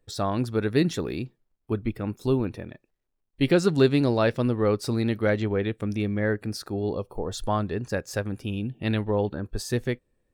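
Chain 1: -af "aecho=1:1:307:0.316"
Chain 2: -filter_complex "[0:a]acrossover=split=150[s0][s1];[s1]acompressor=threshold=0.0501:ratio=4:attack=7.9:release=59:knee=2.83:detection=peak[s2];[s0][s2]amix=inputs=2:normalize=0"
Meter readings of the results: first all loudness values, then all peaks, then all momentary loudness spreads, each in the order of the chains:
-26.5 LUFS, -29.0 LUFS; -6.0 dBFS, -12.5 dBFS; 10 LU, 7 LU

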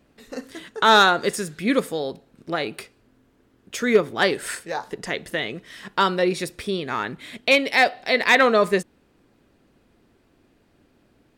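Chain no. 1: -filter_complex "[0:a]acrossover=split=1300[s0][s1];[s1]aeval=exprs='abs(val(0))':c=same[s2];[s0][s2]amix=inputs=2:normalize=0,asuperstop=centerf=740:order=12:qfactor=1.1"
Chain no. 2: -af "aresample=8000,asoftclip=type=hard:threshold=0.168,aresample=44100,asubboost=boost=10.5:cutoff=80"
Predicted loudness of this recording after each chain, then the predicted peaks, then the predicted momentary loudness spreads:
-25.5 LUFS, -25.0 LUFS; -5.0 dBFS, -9.0 dBFS; 17 LU, 17 LU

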